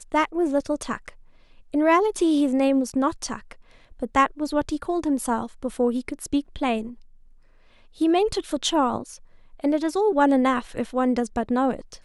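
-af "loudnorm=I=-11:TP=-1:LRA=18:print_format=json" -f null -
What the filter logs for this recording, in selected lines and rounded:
"input_i" : "-23.5",
"input_tp" : "-6.4",
"input_lra" : "2.8",
"input_thresh" : "-34.4",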